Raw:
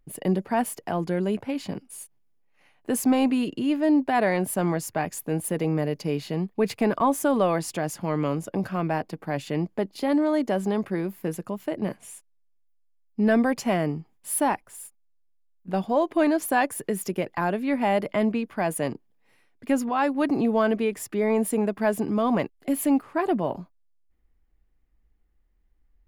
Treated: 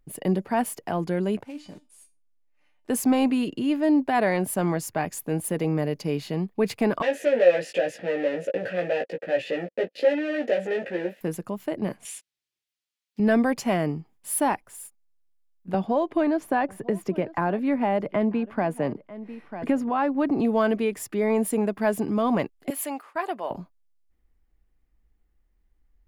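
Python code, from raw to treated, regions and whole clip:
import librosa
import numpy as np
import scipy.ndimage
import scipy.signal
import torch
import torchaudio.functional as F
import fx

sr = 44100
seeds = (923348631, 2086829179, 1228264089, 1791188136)

y = fx.chain(x, sr, fx.block_float(bits=5),
    fx.lowpass(hz=9800.0, slope=12),
    fx.comb_fb(f0_hz=300.0, decay_s=0.24, harmonics='all', damping=0.0, mix_pct=80), at=(1.43, 2.9))
y = fx.chain(y, sr, fx.leveller(passes=5),
    fx.vowel_filter(vowel='e'),
    fx.doubler(ms=17.0, db=-3.0), at=(7.02, 11.21))
y = fx.chain(y, sr, fx.block_float(bits=7),
    fx.weighting(curve='D'), at=(12.05, 13.2))
y = fx.chain(y, sr, fx.lowpass(hz=1500.0, slope=6),
    fx.echo_single(ms=945, db=-23.5),
    fx.band_squash(depth_pct=70), at=(15.74, 20.4))
y = fx.chain(y, sr, fx.highpass(hz=640.0, slope=12),
    fx.gate_hold(open_db=-37.0, close_db=-42.0, hold_ms=71.0, range_db=-21, attack_ms=1.4, release_ms=100.0), at=(22.7, 23.51))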